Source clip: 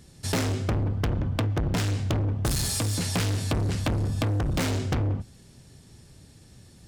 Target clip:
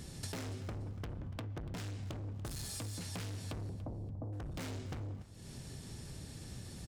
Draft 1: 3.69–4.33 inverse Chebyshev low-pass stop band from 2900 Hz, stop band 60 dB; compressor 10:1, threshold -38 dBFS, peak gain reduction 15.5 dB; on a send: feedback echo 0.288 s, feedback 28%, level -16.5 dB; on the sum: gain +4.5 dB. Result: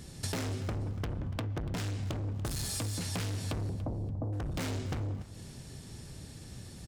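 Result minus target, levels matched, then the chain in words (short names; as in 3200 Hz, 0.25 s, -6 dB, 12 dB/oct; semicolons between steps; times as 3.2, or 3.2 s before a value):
compressor: peak gain reduction -7 dB
3.69–4.33 inverse Chebyshev low-pass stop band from 2900 Hz, stop band 60 dB; compressor 10:1, threshold -46 dBFS, peak gain reduction 22.5 dB; on a send: feedback echo 0.288 s, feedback 28%, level -16.5 dB; on the sum: gain +4.5 dB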